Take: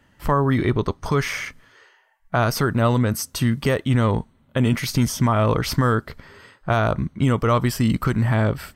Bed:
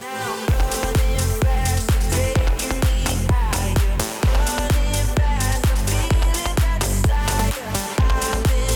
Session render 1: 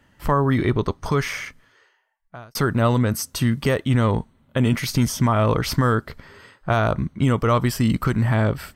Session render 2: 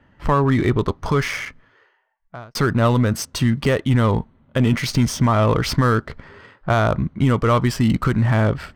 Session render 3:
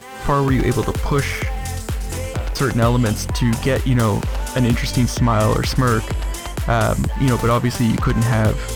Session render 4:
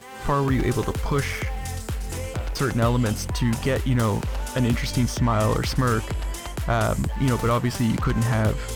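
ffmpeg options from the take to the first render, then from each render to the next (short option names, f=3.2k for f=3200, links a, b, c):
-filter_complex "[0:a]asplit=2[a][b];[a]atrim=end=2.55,asetpts=PTS-STARTPTS,afade=t=out:st=1.09:d=1.46[c];[b]atrim=start=2.55,asetpts=PTS-STARTPTS,afade=t=in:d=0.004:c=hsin[d];[c][d]concat=n=2:v=0:a=1"
-filter_complex "[0:a]asplit=2[a][b];[b]asoftclip=type=tanh:threshold=-19.5dB,volume=-6dB[c];[a][c]amix=inputs=2:normalize=0,adynamicsmooth=sensitivity=6:basefreq=2.7k"
-filter_complex "[1:a]volume=-6dB[a];[0:a][a]amix=inputs=2:normalize=0"
-af "volume=-5dB"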